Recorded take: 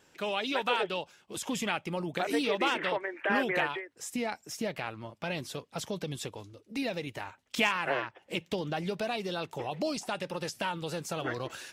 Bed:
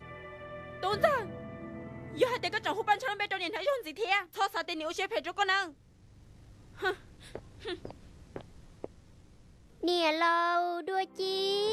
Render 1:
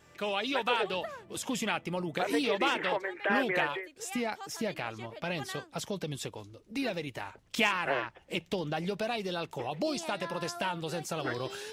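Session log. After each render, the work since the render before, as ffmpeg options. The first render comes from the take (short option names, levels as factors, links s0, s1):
-filter_complex "[1:a]volume=0.178[s0];[0:a][s0]amix=inputs=2:normalize=0"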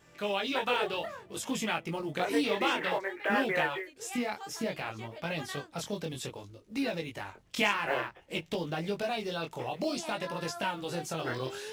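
-filter_complex "[0:a]asplit=2[s0][s1];[s1]acrusher=bits=4:mode=log:mix=0:aa=0.000001,volume=0.355[s2];[s0][s2]amix=inputs=2:normalize=0,flanger=delay=18:depth=6.6:speed=0.58"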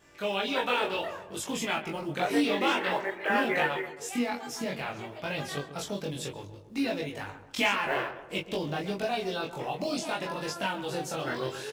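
-filter_complex "[0:a]asplit=2[s0][s1];[s1]adelay=21,volume=0.75[s2];[s0][s2]amix=inputs=2:normalize=0,asplit=2[s3][s4];[s4]adelay=135,lowpass=f=1700:p=1,volume=0.266,asplit=2[s5][s6];[s6]adelay=135,lowpass=f=1700:p=1,volume=0.5,asplit=2[s7][s8];[s8]adelay=135,lowpass=f=1700:p=1,volume=0.5,asplit=2[s9][s10];[s10]adelay=135,lowpass=f=1700:p=1,volume=0.5,asplit=2[s11][s12];[s12]adelay=135,lowpass=f=1700:p=1,volume=0.5[s13];[s3][s5][s7][s9][s11][s13]amix=inputs=6:normalize=0"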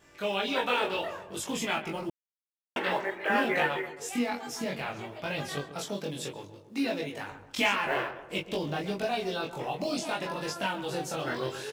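-filter_complex "[0:a]asettb=1/sr,asplit=3[s0][s1][s2];[s0]atrim=end=5.714[s3];[s1]atrim=start=5.71:end=7.32,asetpts=PTS-STARTPTS,afade=t=in:d=0.004:c=qsin,afade=t=out:st=1.606:d=0.004:c=qsin,highpass=140[s4];[s2]atrim=start=7.316[s5];[s3][s4]acrossfade=d=0.004:c1=hsin:c2=qsin[s6];[s6][s5]acrossfade=d=0.004:c1=qsin:c2=hsin,asplit=3[s7][s8][s9];[s7]atrim=end=2.1,asetpts=PTS-STARTPTS,afade=t=out:st=2.096:d=0.004:c=hsin[s10];[s8]atrim=start=2.1:end=2.76,asetpts=PTS-STARTPTS,volume=0[s11];[s9]atrim=start=2.76,asetpts=PTS-STARTPTS,afade=t=in:d=0.004:c=hsin[s12];[s10][s11][s12]concat=n=3:v=0:a=1"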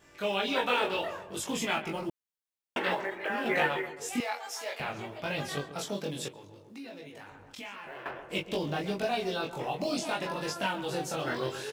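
-filter_complex "[0:a]asettb=1/sr,asplit=3[s0][s1][s2];[s0]atrim=end=2.944[s3];[s1]atrim=start=2.94:end=3.46,asetpts=PTS-STARTPTS,afade=t=in:d=0.004:c=qsin,afade=t=out:st=0.516:d=0.004:c=qsin,acompressor=threshold=0.0398:ratio=6:attack=3.2:release=140:knee=1:detection=peak[s4];[s2]atrim=start=3.456[s5];[s3][s4]acrossfade=d=0.004:c1=hsin:c2=qsin[s6];[s6][s5]acrossfade=d=0.004:c1=qsin:c2=hsin,asettb=1/sr,asplit=3[s7][s8][s9];[s7]atrim=end=4.204[s10];[s8]atrim=start=4.2:end=4.8,asetpts=PTS-STARTPTS,afade=t=in:d=0.004:c=qsin,afade=t=out:st=0.596:d=0.004:c=qsin,highpass=f=540:w=0.5412,highpass=f=540:w=1.3066[s11];[s9]atrim=start=4.796[s12];[s10][s11]acrossfade=d=0.004:c1=hsin:c2=qsin[s13];[s13][s12]acrossfade=d=0.004:c1=qsin:c2=hsin,asettb=1/sr,asplit=3[s14][s15][s16];[s14]atrim=end=6.284[s17];[s15]atrim=start=6.28:end=8.06,asetpts=PTS-STARTPTS,afade=t=in:d=0.004:c=qsin,afade=t=out:st=1.776:d=0.004:c=qsin,acompressor=threshold=0.00398:ratio=2.5:attack=3.2:release=140:knee=1:detection=peak[s18];[s16]atrim=start=8.056[s19];[s17][s18]acrossfade=d=0.004:c1=hsin:c2=qsin[s20];[s20][s19]acrossfade=d=0.004:c1=qsin:c2=hsin"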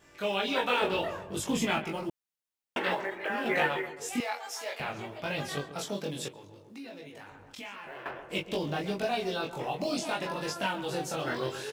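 -filter_complex "[0:a]asettb=1/sr,asplit=3[s0][s1][s2];[s0]atrim=end=0.824[s3];[s1]atrim=start=0.82:end=1.84,asetpts=PTS-STARTPTS,afade=t=in:d=0.004:c=qsin,afade=t=out:st=1.016:d=0.004:c=qsin,lowshelf=f=270:g=9.5[s4];[s2]atrim=start=1.836[s5];[s3][s4]acrossfade=d=0.004:c1=hsin:c2=qsin[s6];[s6][s5]acrossfade=d=0.004:c1=qsin:c2=hsin"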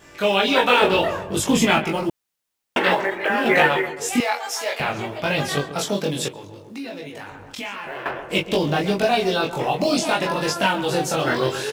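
-af "volume=3.76,alimiter=limit=0.794:level=0:latency=1"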